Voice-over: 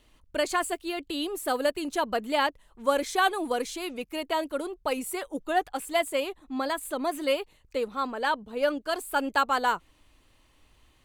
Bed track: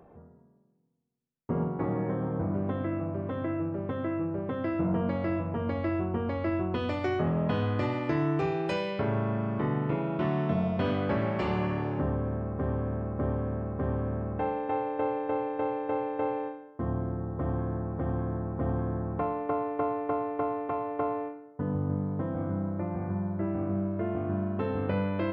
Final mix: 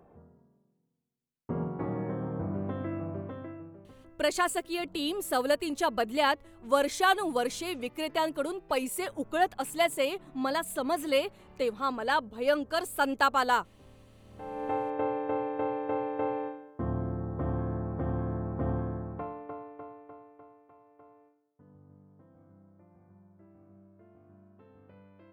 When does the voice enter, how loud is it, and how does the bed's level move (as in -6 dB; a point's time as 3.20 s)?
3.85 s, -0.5 dB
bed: 3.17 s -3.5 dB
4.16 s -26.5 dB
14.19 s -26.5 dB
14.64 s -1 dB
18.73 s -1 dB
20.65 s -27 dB